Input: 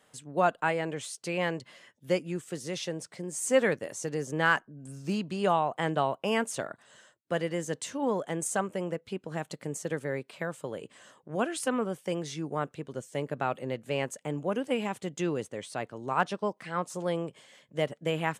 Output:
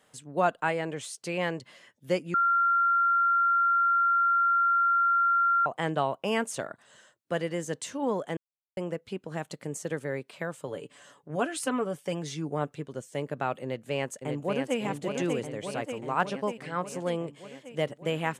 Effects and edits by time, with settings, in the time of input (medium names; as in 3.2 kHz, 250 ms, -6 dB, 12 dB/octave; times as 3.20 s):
2.34–5.66 s: bleep 1.38 kHz -20.5 dBFS
8.37–8.77 s: mute
10.67–12.85 s: comb 7 ms, depth 49%
13.62–14.80 s: echo throw 590 ms, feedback 70%, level -4.5 dB